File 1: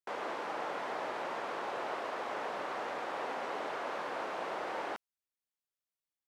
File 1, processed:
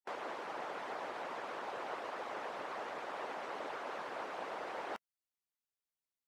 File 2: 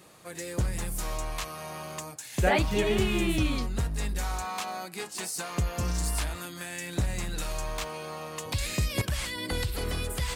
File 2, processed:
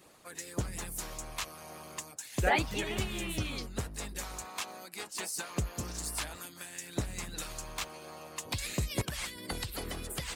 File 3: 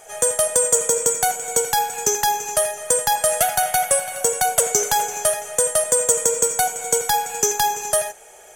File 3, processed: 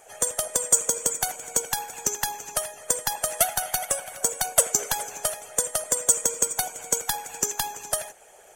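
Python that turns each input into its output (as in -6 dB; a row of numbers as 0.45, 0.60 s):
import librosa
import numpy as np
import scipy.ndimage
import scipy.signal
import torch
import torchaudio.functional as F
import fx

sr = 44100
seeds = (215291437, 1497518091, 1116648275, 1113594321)

y = fx.hpss(x, sr, part='harmonic', gain_db=-14)
y = fx.dynamic_eq(y, sr, hz=120.0, q=0.82, threshold_db=-48.0, ratio=4.0, max_db=-4)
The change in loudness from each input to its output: -4.5, -5.5, -6.0 LU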